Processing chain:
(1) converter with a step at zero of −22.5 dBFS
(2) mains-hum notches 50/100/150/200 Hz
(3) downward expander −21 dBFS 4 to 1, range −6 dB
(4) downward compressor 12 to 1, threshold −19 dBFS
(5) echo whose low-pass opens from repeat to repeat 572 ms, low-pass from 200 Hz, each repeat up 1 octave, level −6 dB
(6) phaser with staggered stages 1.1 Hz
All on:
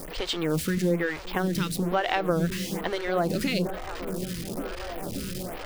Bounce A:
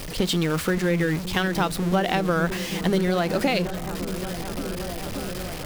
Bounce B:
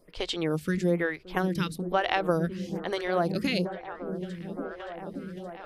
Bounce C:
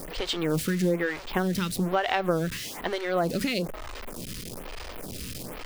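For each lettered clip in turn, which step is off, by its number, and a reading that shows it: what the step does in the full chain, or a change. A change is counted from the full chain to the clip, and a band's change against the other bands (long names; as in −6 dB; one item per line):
6, change in crest factor −4.5 dB
1, distortion level −10 dB
5, change in momentary loudness spread +4 LU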